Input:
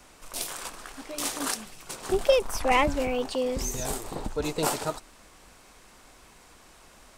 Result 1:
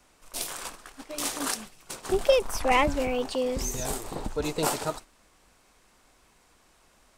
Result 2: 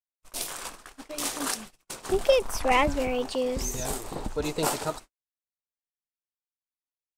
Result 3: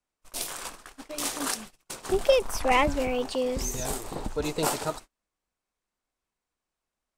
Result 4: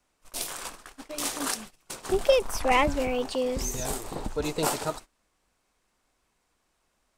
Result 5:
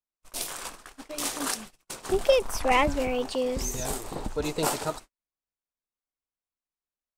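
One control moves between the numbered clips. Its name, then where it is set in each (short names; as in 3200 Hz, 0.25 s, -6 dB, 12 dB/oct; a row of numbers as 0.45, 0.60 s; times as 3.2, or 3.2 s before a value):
gate, range: -8, -60, -34, -20, -48 dB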